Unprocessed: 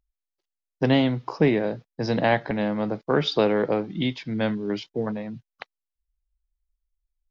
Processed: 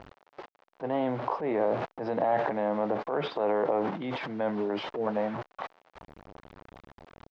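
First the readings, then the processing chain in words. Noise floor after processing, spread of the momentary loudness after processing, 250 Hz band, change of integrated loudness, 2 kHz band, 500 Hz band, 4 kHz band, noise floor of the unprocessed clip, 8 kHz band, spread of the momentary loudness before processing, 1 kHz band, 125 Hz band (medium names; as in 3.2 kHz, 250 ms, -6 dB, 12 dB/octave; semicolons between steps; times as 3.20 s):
under -85 dBFS, 14 LU, -9.0 dB, -5.5 dB, -8.5 dB, -3.5 dB, -12.5 dB, under -85 dBFS, no reading, 9 LU, 0.0 dB, -13.0 dB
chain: one-bit delta coder 64 kbps, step -35.5 dBFS; reverse; compression 6:1, threshold -29 dBFS, peak gain reduction 14.5 dB; reverse; transient shaper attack -7 dB, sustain +10 dB; in parallel at -4.5 dB: overload inside the chain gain 28 dB; on the sum: band-pass filter 750 Hz, Q 1.3; distance through air 180 m; trim +7 dB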